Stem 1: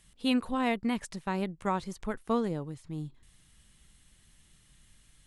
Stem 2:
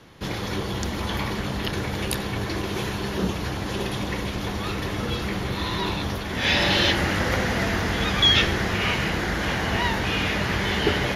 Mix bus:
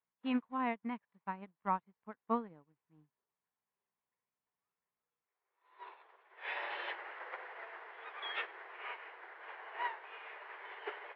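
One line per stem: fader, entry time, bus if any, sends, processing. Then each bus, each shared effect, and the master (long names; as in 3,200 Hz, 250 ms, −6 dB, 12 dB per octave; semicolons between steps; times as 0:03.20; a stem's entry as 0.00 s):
−2.5 dB, 0.00 s, no send, mains hum 60 Hz, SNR 30 dB
−9.0 dB, 0.00 s, no send, Butterworth high-pass 360 Hz 96 dB per octave; automatic ducking −22 dB, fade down 0.60 s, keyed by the first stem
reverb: not used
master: loudspeaker in its box 200–2,400 Hz, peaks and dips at 370 Hz −8 dB, 540 Hz −5 dB, 1,000 Hz +5 dB; expander for the loud parts 2.5 to 1, over −50 dBFS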